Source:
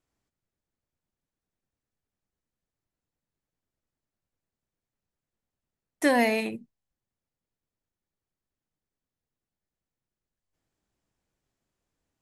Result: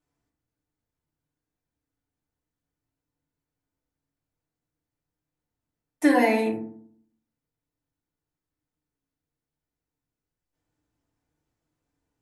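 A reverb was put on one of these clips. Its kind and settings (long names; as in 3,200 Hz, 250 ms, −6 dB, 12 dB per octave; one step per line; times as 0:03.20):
feedback delay network reverb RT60 0.6 s, low-frequency decay 1.3×, high-frequency decay 0.3×, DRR −3 dB
level −4 dB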